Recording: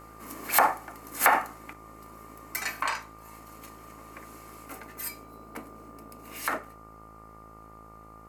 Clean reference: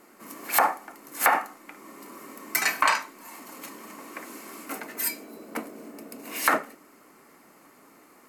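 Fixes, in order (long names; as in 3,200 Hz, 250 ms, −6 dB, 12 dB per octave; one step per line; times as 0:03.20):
hum removal 54.3 Hz, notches 26
notch filter 1,200 Hz, Q 30
level correction +8 dB, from 0:01.73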